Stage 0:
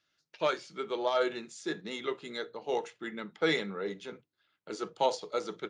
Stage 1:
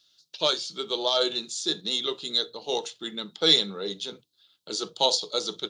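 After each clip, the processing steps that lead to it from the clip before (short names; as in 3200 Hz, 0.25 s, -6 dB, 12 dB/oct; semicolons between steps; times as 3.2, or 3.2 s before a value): resonant high shelf 2800 Hz +10 dB, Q 3; gain +2.5 dB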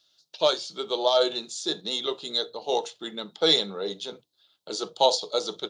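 bell 690 Hz +9 dB 1.4 oct; gain -2.5 dB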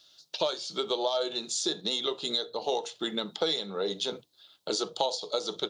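compressor 6:1, threshold -34 dBFS, peak gain reduction 18 dB; gain +7 dB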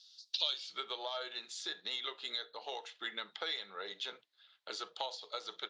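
band-pass sweep 4900 Hz -> 1900 Hz, 0.27–0.77; gain +2.5 dB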